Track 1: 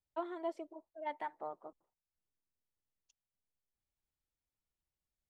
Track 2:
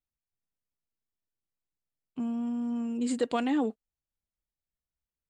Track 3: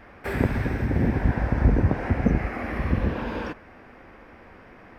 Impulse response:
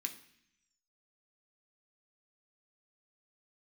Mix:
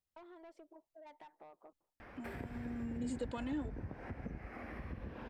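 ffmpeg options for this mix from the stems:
-filter_complex "[0:a]asoftclip=type=tanh:threshold=0.0112,acompressor=threshold=0.00355:ratio=6,volume=0.668[s0];[1:a]asplit=2[s1][s2];[s2]adelay=2.1,afreqshift=0.71[s3];[s1][s3]amix=inputs=2:normalize=1,volume=1[s4];[2:a]acompressor=threshold=0.0126:ratio=2,adelay=2000,volume=0.631[s5];[s0][s4][s5]amix=inputs=3:normalize=0,acompressor=threshold=0.00178:ratio=1.5"

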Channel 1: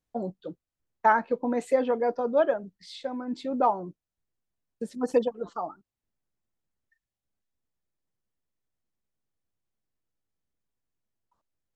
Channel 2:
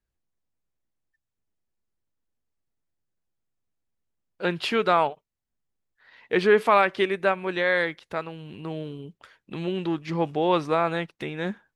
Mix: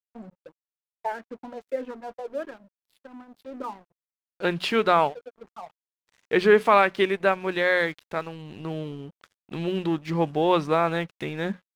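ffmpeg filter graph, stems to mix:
-filter_complex "[0:a]highpass=110,bandreject=f=60:t=h:w=6,bandreject=f=120:t=h:w=6,bandreject=f=180:t=h:w=6,bandreject=f=240:t=h:w=6,bandreject=f=300:t=h:w=6,bandreject=f=360:t=h:w=6,bandreject=f=420:t=h:w=6,asplit=2[s0][s1];[s1]afreqshift=-1.7[s2];[s0][s2]amix=inputs=2:normalize=1,volume=0.562[s3];[1:a]bandreject=f=60:t=h:w=6,bandreject=f=120:t=h:w=6,bandreject=f=180:t=h:w=6,bandreject=f=240:t=h:w=6,volume=1.12,asplit=2[s4][s5];[s5]apad=whole_len=518477[s6];[s3][s6]sidechaincompress=threshold=0.0126:ratio=6:attack=10:release=228[s7];[s7][s4]amix=inputs=2:normalize=0,lowshelf=f=150:g=5,aeval=exprs='sgn(val(0))*max(abs(val(0))-0.00422,0)':c=same"

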